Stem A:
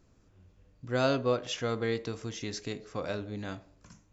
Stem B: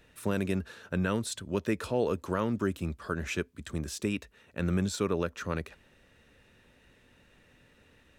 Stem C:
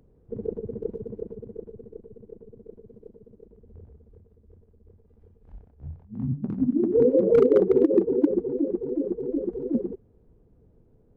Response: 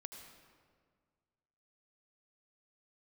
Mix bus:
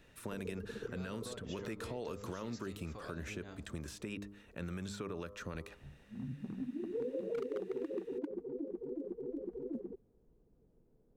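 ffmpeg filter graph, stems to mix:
-filter_complex "[0:a]acompressor=threshold=-39dB:ratio=5,volume=-6dB[a];[1:a]bandreject=f=101.1:t=h:w=4,bandreject=f=202.2:t=h:w=4,bandreject=f=303.3:t=h:w=4,bandreject=f=404.4:t=h:w=4,bandreject=f=505.5:t=h:w=4,bandreject=f=606.6:t=h:w=4,bandreject=f=707.7:t=h:w=4,bandreject=f=808.8:t=h:w=4,bandreject=f=909.9:t=h:w=4,bandreject=f=1.011k:t=h:w=4,bandreject=f=1.1121k:t=h:w=4,bandreject=f=1.2132k:t=h:w=4,bandreject=f=1.3143k:t=h:w=4,volume=-3dB[b];[2:a]equalizer=f=86:w=2.9:g=-14.5,volume=-9dB[c];[a][b]amix=inputs=2:normalize=0,alimiter=level_in=3dB:limit=-24dB:level=0:latency=1:release=93,volume=-3dB,volume=0dB[d];[c][d]amix=inputs=2:normalize=0,acrossover=split=910|2700[e][f][g];[e]acompressor=threshold=-39dB:ratio=4[h];[f]acompressor=threshold=-50dB:ratio=4[i];[g]acompressor=threshold=-52dB:ratio=4[j];[h][i][j]amix=inputs=3:normalize=0"

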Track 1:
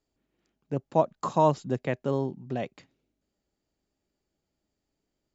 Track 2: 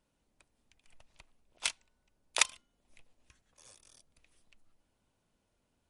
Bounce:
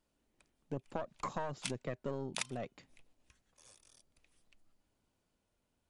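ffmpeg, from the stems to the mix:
-filter_complex "[0:a]aeval=exprs='(tanh(7.94*val(0)+0.75)-tanh(0.75))/7.94':c=same,alimiter=limit=-19.5dB:level=0:latency=1:release=20,volume=-1dB[a];[1:a]volume=-3.5dB[b];[a][b]amix=inputs=2:normalize=0,acompressor=threshold=-34dB:ratio=12"

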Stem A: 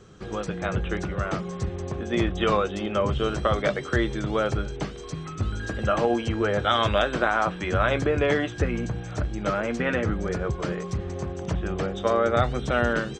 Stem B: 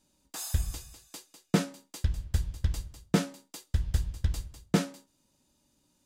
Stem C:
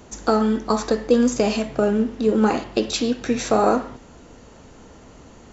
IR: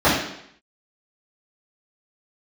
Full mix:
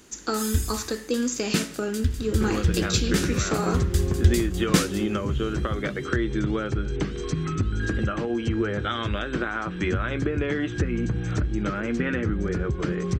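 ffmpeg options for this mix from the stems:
-filter_complex "[0:a]highshelf=f=2.9k:g=-10.5,acompressor=threshold=-32dB:ratio=6,lowshelf=f=280:g=10.5,adelay=2200,volume=1dB[a];[1:a]equalizer=f=82:w=1.3:g=12.5,volume=-0.5dB,asplit=2[b][c];[c]volume=-20.5dB[d];[2:a]volume=-12dB,asplit=2[e][f];[f]apad=whole_len=267075[g];[b][g]sidechaincompress=threshold=-35dB:ratio=3:attack=16:release=462[h];[d]aecho=0:1:83|166|249|332|415|498|581:1|0.49|0.24|0.118|0.0576|0.0282|0.0138[i];[a][h][e][i]amix=inputs=4:normalize=0,firequalizer=gain_entry='entry(120,0);entry(330,7);entry(630,-4);entry(1500,9);entry(7000,13)':delay=0.05:min_phase=1"

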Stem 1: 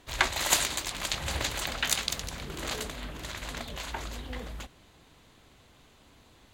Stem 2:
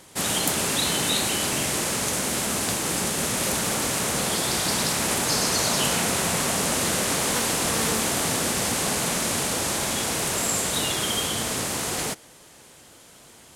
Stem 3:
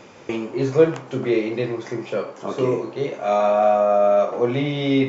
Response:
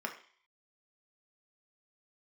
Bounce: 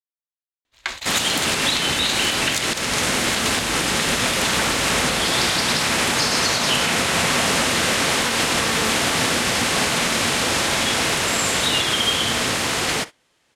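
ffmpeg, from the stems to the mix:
-filter_complex "[0:a]dynaudnorm=f=180:g=7:m=9dB,adelay=650,volume=-5.5dB,asplit=2[a][b];[b]volume=-9dB[c];[1:a]bass=f=250:g=2,treble=f=4k:g=-9,adelay=900,volume=3dB,asplit=2[d][e];[e]volume=-13dB[f];[3:a]atrim=start_sample=2205[g];[c][f]amix=inputs=2:normalize=0[h];[h][g]afir=irnorm=-1:irlink=0[i];[a][d][i]amix=inputs=3:normalize=0,agate=range=-21dB:threshold=-33dB:ratio=16:detection=peak,equalizer=f=4.2k:w=0.47:g=9.5,alimiter=limit=-9dB:level=0:latency=1:release=159"

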